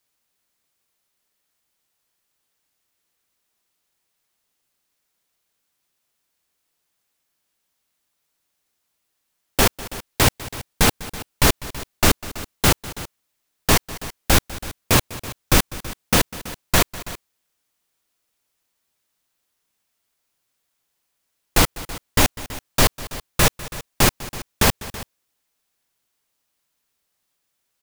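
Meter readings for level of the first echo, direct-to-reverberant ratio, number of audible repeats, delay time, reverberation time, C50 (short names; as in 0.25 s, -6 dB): -18.0 dB, none, 2, 0.199 s, none, none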